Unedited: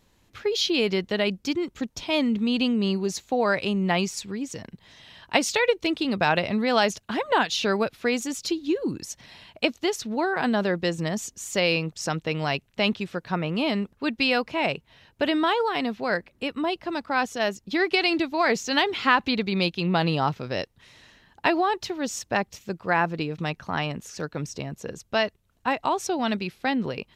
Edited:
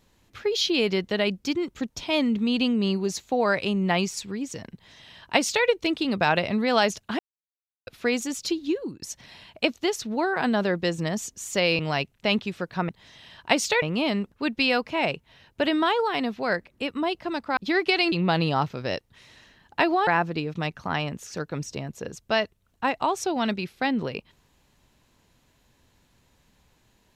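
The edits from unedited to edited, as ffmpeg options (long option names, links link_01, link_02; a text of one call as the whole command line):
ffmpeg -i in.wav -filter_complex "[0:a]asplit=10[link_01][link_02][link_03][link_04][link_05][link_06][link_07][link_08][link_09][link_10];[link_01]atrim=end=7.19,asetpts=PTS-STARTPTS,afade=type=out:start_time=7.186:duration=0.004:curve=hsin[link_11];[link_02]atrim=start=7.19:end=7.87,asetpts=PTS-STARTPTS,volume=0[link_12];[link_03]atrim=start=7.87:end=9.02,asetpts=PTS-STARTPTS,afade=type=in:duration=0.004:curve=hsin,afade=type=out:start_time=0.79:duration=0.36:silence=0.133352[link_13];[link_04]atrim=start=9.02:end=11.792,asetpts=PTS-STARTPTS,afade=type=in:duration=0.004:curve=hsin:silence=0.133352[link_14];[link_05]atrim=start=12.328:end=13.432[link_15];[link_06]atrim=start=4.728:end=5.662[link_16];[link_07]atrim=start=13.428:end=17.182[link_17];[link_08]atrim=start=17.618:end=18.172[link_18];[link_09]atrim=start=19.778:end=21.732[link_19];[link_10]atrim=start=22.898[link_20];[link_11][link_12][link_13][link_14]concat=n=4:v=0:a=1[link_21];[link_21][link_15]acrossfade=duration=0.004:curve1=hsin:curve2=hsin[link_22];[link_22][link_16]acrossfade=duration=0.004:curve1=hsin:curve2=hsin[link_23];[link_23][link_17]acrossfade=duration=0.004:curve1=hsin:curve2=hsin[link_24];[link_24][link_18]acrossfade=duration=0.004:curve1=hsin:curve2=hsin[link_25];[link_25][link_19]acrossfade=duration=0.004:curve1=hsin:curve2=hsin[link_26];[link_26][link_20]acrossfade=duration=0.004:curve1=hsin:curve2=hsin" out.wav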